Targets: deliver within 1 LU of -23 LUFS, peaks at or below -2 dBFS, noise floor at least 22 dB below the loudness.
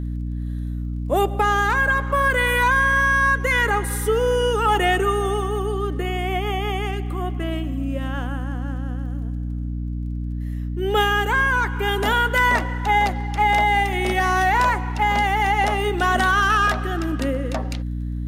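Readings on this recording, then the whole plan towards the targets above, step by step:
tick rate 27 per s; hum 60 Hz; highest harmonic 300 Hz; hum level -24 dBFS; loudness -21.0 LUFS; peak level -8.0 dBFS; loudness target -23.0 LUFS
-> de-click; hum notches 60/120/180/240/300 Hz; trim -2 dB

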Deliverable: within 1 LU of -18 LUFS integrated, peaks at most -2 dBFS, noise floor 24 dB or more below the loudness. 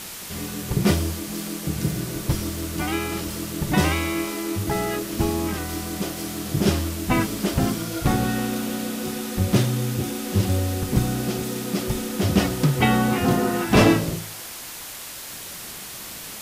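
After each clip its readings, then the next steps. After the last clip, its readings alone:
noise floor -37 dBFS; noise floor target -48 dBFS; loudness -24.0 LUFS; peak level -3.5 dBFS; loudness target -18.0 LUFS
-> noise print and reduce 11 dB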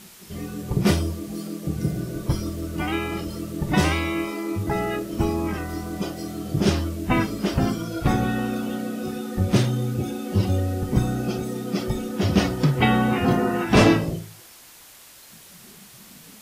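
noise floor -47 dBFS; noise floor target -48 dBFS
-> noise print and reduce 6 dB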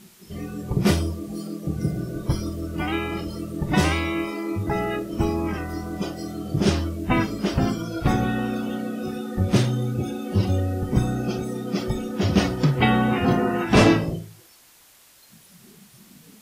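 noise floor -53 dBFS; loudness -24.0 LUFS; peak level -3.5 dBFS; loudness target -18.0 LUFS
-> trim +6 dB; peak limiter -2 dBFS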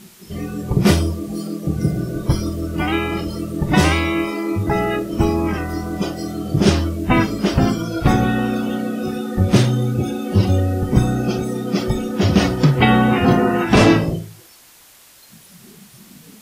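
loudness -18.5 LUFS; peak level -2.0 dBFS; noise floor -47 dBFS

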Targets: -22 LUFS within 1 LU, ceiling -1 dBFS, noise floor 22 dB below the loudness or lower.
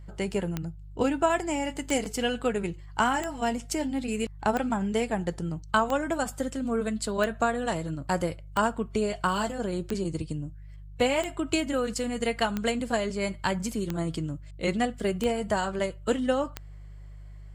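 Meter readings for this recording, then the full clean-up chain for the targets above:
clicks found 13; hum 50 Hz; highest harmonic 150 Hz; hum level -41 dBFS; loudness -29.0 LUFS; peak level -11.5 dBFS; loudness target -22.0 LUFS
-> de-click; de-hum 50 Hz, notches 3; trim +7 dB

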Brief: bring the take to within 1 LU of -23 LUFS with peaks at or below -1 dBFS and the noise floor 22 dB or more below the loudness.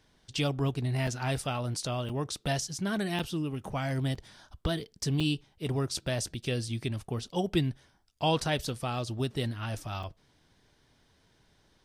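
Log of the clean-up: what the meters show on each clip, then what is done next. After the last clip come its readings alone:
dropouts 6; longest dropout 5.2 ms; loudness -32.5 LUFS; peak level -15.0 dBFS; loudness target -23.0 LUFS
-> interpolate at 1.07/2.09/3.19/4.15/5.20/10.03 s, 5.2 ms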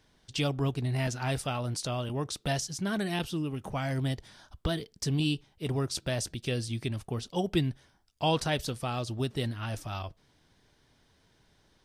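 dropouts 0; loudness -32.5 LUFS; peak level -15.0 dBFS; loudness target -23.0 LUFS
-> trim +9.5 dB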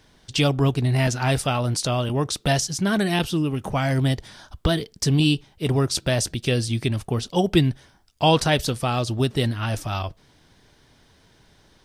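loudness -23.0 LUFS; peak level -5.5 dBFS; noise floor -58 dBFS

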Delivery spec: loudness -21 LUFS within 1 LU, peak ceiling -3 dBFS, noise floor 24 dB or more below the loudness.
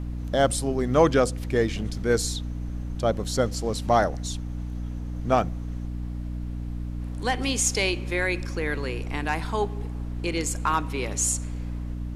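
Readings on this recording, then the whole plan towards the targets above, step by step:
hum 60 Hz; highest harmonic 300 Hz; hum level -29 dBFS; noise floor -33 dBFS; noise floor target -51 dBFS; loudness -26.5 LUFS; peak level -6.0 dBFS; loudness target -21.0 LUFS
-> de-hum 60 Hz, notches 5; noise print and reduce 18 dB; trim +5.5 dB; peak limiter -3 dBFS

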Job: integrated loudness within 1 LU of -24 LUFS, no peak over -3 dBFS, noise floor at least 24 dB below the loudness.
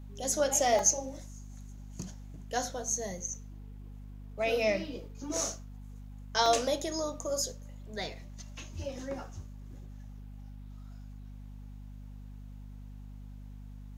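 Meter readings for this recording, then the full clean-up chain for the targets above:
dropouts 3; longest dropout 2.0 ms; hum 50 Hz; highest harmonic 250 Hz; hum level -43 dBFS; loudness -31.5 LUFS; peak level -11.5 dBFS; loudness target -24.0 LUFS
-> interpolate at 0.79/5.37/6.46 s, 2 ms; hum notches 50/100/150/200/250 Hz; trim +7.5 dB

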